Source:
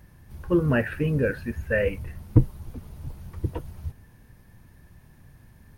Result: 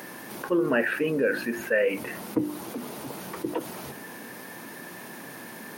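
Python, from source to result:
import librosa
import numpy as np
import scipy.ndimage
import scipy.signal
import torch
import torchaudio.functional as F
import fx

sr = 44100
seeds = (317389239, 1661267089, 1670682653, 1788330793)

y = scipy.signal.sosfilt(scipy.signal.butter(4, 250.0, 'highpass', fs=sr, output='sos'), x)
y = fx.hum_notches(y, sr, base_hz=50, count=7)
y = fx.env_flatten(y, sr, amount_pct=50)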